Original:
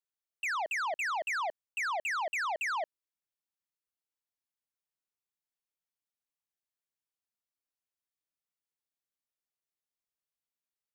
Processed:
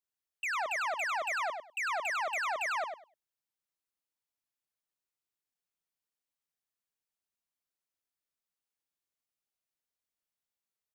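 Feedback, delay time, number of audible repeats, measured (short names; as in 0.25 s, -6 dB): 17%, 0.1 s, 2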